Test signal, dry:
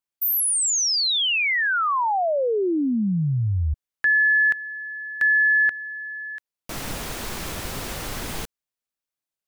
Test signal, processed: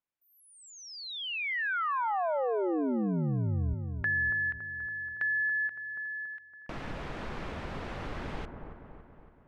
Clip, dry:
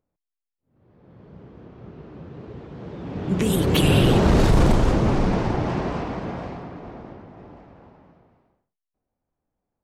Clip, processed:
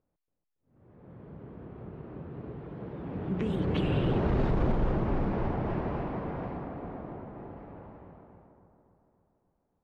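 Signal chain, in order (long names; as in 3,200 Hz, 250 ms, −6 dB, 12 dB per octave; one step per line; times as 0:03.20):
downward compressor 1.5 to 1, threshold −45 dBFS
low-pass filter 2,300 Hz 12 dB per octave
on a send: delay with a low-pass on its return 281 ms, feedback 55%, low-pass 1,300 Hz, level −6.5 dB
on the sum: every ending faded ahead of time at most 340 dB per second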